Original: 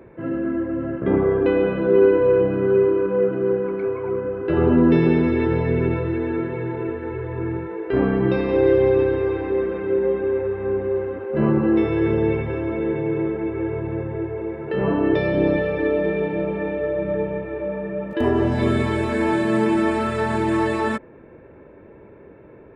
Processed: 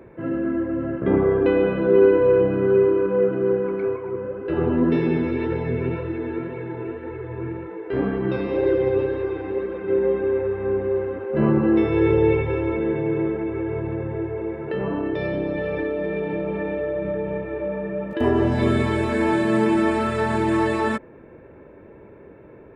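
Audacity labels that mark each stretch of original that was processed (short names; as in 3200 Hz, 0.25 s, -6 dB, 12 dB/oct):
3.960000	9.880000	flange 1.9 Hz, delay 1.7 ms, depth 8.8 ms, regen +54%
11.940000	12.770000	comb 2.2 ms, depth 59%
13.390000	18.210000	compressor, threshold -21 dBFS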